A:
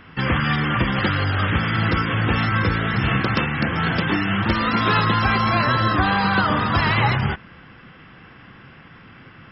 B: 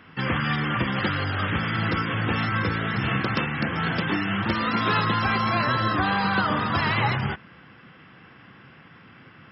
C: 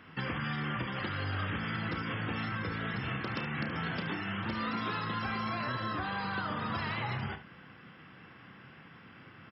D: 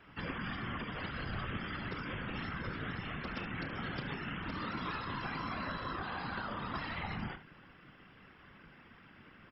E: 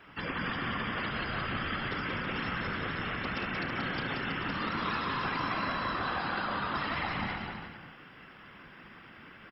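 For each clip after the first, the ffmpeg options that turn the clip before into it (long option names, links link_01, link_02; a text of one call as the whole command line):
ffmpeg -i in.wav -af "highpass=97,volume=-4dB" out.wav
ffmpeg -i in.wav -af "acompressor=threshold=-28dB:ratio=6,aecho=1:1:32|73:0.282|0.224,volume=-4.5dB" out.wav
ffmpeg -i in.wav -af "afftfilt=real='hypot(re,im)*cos(2*PI*random(0))':imag='hypot(re,im)*sin(2*PI*random(1))':win_size=512:overlap=0.75,volume=1.5dB" out.wav
ffmpeg -i in.wav -af "lowshelf=frequency=220:gain=-7,aecho=1:1:180|324|439.2|531.4|605.1:0.631|0.398|0.251|0.158|0.1,volume=5.5dB" out.wav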